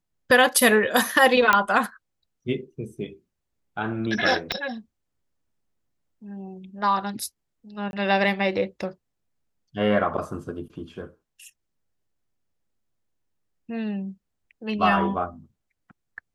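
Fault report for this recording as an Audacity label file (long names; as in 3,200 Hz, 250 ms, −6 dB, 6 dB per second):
1.530000	1.530000	click −4 dBFS
4.520000	4.520000	click −10 dBFS
7.910000	7.930000	drop-out 21 ms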